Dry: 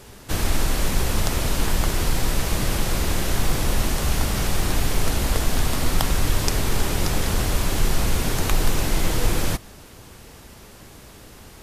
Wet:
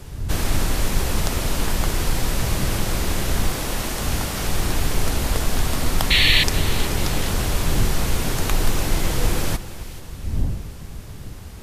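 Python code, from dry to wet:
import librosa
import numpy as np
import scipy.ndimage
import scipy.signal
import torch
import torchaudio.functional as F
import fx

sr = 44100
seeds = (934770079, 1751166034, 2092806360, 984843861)

y = fx.dmg_wind(x, sr, seeds[0], corner_hz=85.0, level_db=-29.0)
y = fx.low_shelf(y, sr, hz=160.0, db=-8.0, at=(3.49, 4.44))
y = fx.spec_paint(y, sr, seeds[1], shape='noise', start_s=6.1, length_s=0.34, low_hz=1700.0, high_hz=4500.0, level_db=-17.0)
y = fx.echo_split(y, sr, split_hz=2000.0, low_ms=272, high_ms=434, feedback_pct=52, wet_db=-15.0)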